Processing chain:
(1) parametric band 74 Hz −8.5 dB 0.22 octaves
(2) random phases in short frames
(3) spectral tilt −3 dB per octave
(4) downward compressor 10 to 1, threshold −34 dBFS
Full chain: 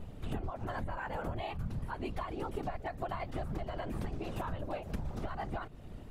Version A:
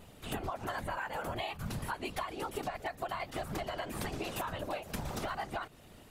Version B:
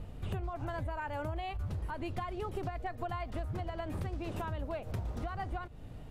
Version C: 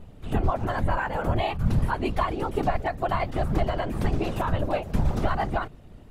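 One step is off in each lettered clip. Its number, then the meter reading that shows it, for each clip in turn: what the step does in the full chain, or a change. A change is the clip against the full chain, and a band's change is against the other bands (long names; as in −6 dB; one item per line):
3, 8 kHz band +12.0 dB
2, 125 Hz band +2.0 dB
4, change in crest factor +2.0 dB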